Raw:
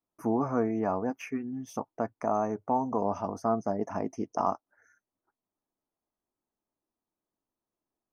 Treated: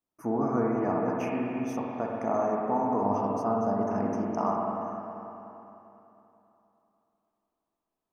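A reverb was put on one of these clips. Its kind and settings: spring tank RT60 3.2 s, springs 49/60 ms, chirp 80 ms, DRR -2.5 dB; trim -2 dB

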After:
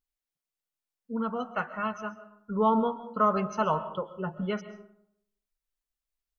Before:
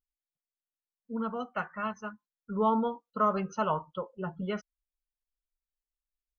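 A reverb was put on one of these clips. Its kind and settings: algorithmic reverb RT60 0.74 s, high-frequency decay 0.5×, pre-delay 90 ms, DRR 13.5 dB; trim +2.5 dB

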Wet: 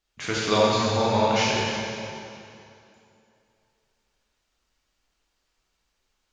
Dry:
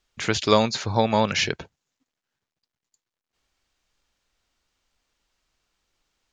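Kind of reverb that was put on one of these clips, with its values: plate-style reverb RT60 2.7 s, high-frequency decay 0.85×, DRR -7 dB; trim -7.5 dB

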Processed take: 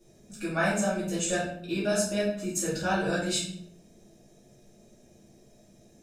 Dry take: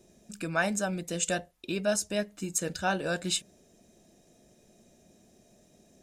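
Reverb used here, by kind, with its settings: simulated room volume 110 m³, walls mixed, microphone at 2.4 m; trim -7.5 dB

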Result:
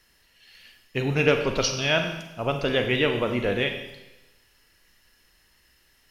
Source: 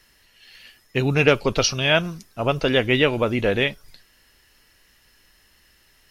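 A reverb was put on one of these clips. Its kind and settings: Schroeder reverb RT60 1 s, combs from 33 ms, DRR 5.5 dB; trim -5 dB

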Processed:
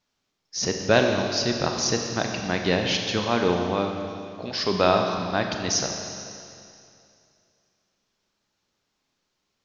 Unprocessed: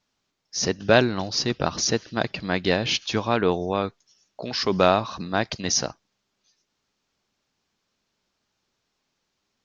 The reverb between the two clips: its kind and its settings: Schroeder reverb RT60 2.5 s, combs from 30 ms, DRR 3 dB; trim -2 dB

